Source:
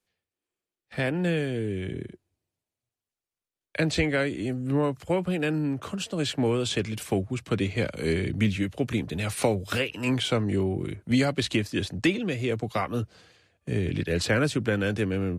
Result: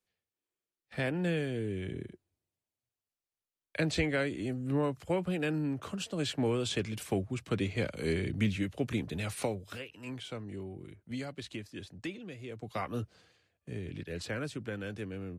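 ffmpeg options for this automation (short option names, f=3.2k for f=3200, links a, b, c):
-af "volume=4dB,afade=t=out:st=9.15:d=0.61:silence=0.298538,afade=t=in:st=12.54:d=0.34:silence=0.334965,afade=t=out:st=12.88:d=0.92:silence=0.473151"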